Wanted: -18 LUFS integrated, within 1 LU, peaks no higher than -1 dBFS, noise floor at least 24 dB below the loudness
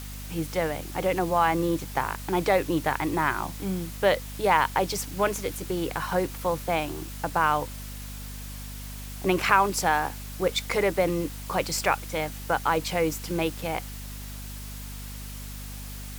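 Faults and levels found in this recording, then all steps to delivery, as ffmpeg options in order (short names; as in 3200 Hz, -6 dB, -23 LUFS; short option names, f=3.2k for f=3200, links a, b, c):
hum 50 Hz; harmonics up to 250 Hz; hum level -36 dBFS; noise floor -38 dBFS; noise floor target -51 dBFS; loudness -26.5 LUFS; peak -4.5 dBFS; loudness target -18.0 LUFS
-> -af "bandreject=f=50:t=h:w=4,bandreject=f=100:t=h:w=4,bandreject=f=150:t=h:w=4,bandreject=f=200:t=h:w=4,bandreject=f=250:t=h:w=4"
-af "afftdn=nr=13:nf=-38"
-af "volume=8.5dB,alimiter=limit=-1dB:level=0:latency=1"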